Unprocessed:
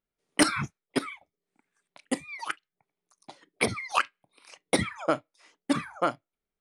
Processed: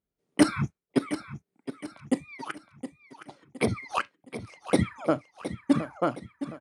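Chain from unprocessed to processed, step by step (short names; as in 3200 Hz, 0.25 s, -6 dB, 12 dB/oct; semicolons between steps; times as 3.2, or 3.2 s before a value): HPF 41 Hz; tilt shelf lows +6.5 dB, about 660 Hz; feedback echo 0.716 s, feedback 42%, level -12 dB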